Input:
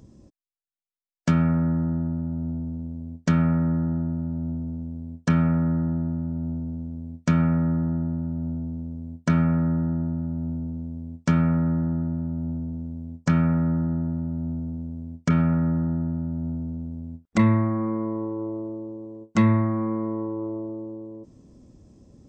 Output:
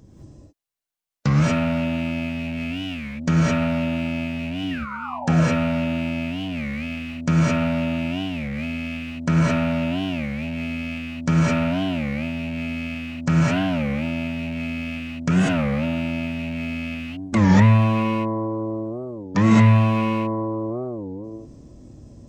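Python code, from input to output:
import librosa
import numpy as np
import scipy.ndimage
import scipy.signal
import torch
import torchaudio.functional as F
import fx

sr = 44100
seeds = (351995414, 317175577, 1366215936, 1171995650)

y = fx.rattle_buzz(x, sr, strikes_db=-29.0, level_db=-28.0)
y = fx.comb_fb(y, sr, f0_hz=240.0, decay_s=0.32, harmonics='all', damping=0.0, mix_pct=80, at=(4.64, 5.17), fade=0.02)
y = fx.spec_paint(y, sr, seeds[0], shape='fall', start_s=4.73, length_s=0.61, low_hz=460.0, high_hz=1800.0, level_db=-38.0)
y = fx.rev_gated(y, sr, seeds[1], gate_ms=240, shape='rising', drr_db=-6.5)
y = fx.record_warp(y, sr, rpm=33.33, depth_cents=250.0)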